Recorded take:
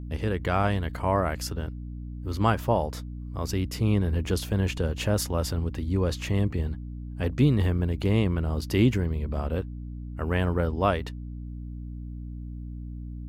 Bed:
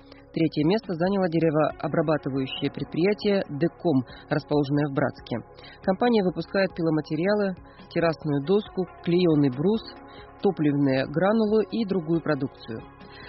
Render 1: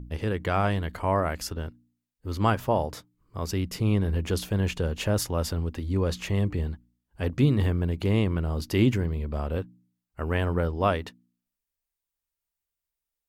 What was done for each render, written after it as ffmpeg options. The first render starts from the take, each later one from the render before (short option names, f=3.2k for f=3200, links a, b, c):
-af "bandreject=f=60:t=h:w=4,bandreject=f=120:t=h:w=4,bandreject=f=180:t=h:w=4,bandreject=f=240:t=h:w=4,bandreject=f=300:t=h:w=4"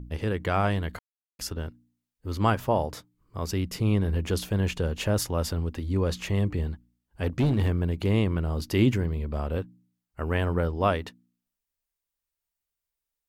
-filter_complex "[0:a]asettb=1/sr,asplit=3[a][b][c];[a]atrim=end=7.264[d];[b]atrim=start=7.26:end=7.76,asetpts=PTS-STARTPTS,afade=t=in:d=0.004:c=qsin,afade=t=out:st=0.496:d=0.004:c=qsin,asoftclip=type=hard:threshold=-19dB[e];[c]atrim=start=7.756[f];[d][e]acrossfade=d=0.004:c1=hsin:c2=qsin[g];[g][f]acrossfade=d=0.004:c1=qsin:c2=hsin,asplit=3[h][i][j];[h]atrim=end=0.99,asetpts=PTS-STARTPTS,afade=t=out:st=0.986:d=0.004:c=hsin[k];[i]atrim=start=0.99:end=1.39,asetpts=PTS-STARTPTS,volume=0[l];[j]atrim=start=1.39,asetpts=PTS-STARTPTS,afade=t=in:d=0.004:c=hsin[m];[k][l][m]concat=n=3:v=0:a=1"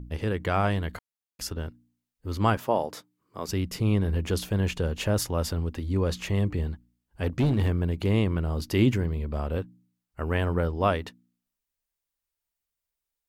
-filter_complex "[0:a]asettb=1/sr,asplit=3[a][b][c];[a]atrim=end=2.574[d];[b]atrim=start=2.57:end=3.49,asetpts=PTS-STARTPTS,afade=t=in:d=0.004:c=qsin,afade=t=out:st=0.916:d=0.004:c=qsin,highpass=210[e];[c]atrim=start=3.486[f];[d][e]acrossfade=d=0.004:c1=hsin:c2=qsin[g];[g][f]acrossfade=d=0.004:c1=qsin:c2=hsin"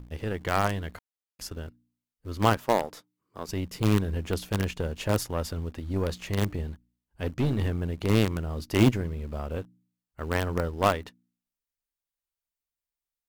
-filter_complex "[0:a]asplit=2[a][b];[b]acrusher=bits=4:dc=4:mix=0:aa=0.000001,volume=-9dB[c];[a][c]amix=inputs=2:normalize=0,aeval=exprs='0.473*(cos(1*acos(clip(val(0)/0.473,-1,1)))-cos(1*PI/2))+0.0422*(cos(3*acos(clip(val(0)/0.473,-1,1)))-cos(3*PI/2))+0.0168*(cos(7*acos(clip(val(0)/0.473,-1,1)))-cos(7*PI/2))':c=same"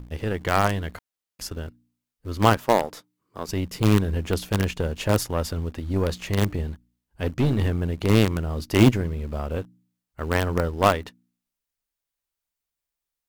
-af "volume=4.5dB"